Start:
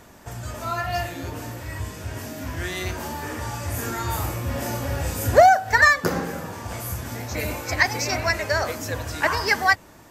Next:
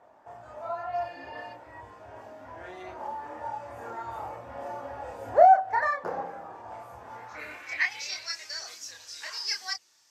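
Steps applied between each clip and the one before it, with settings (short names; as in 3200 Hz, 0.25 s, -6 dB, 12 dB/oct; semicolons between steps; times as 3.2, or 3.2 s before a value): spectral repair 1.01–1.5, 1700–5100 Hz before; band-pass sweep 770 Hz -> 5200 Hz, 7.02–8.31; chorus voices 6, 0.24 Hz, delay 28 ms, depth 1.9 ms; gain +2 dB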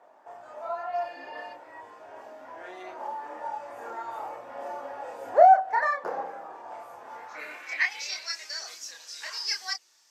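HPF 310 Hz 12 dB/oct; gain +1 dB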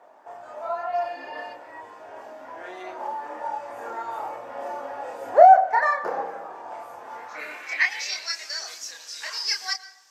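reverb RT60 0.90 s, pre-delay 0.102 s, DRR 15.5 dB; gain +4 dB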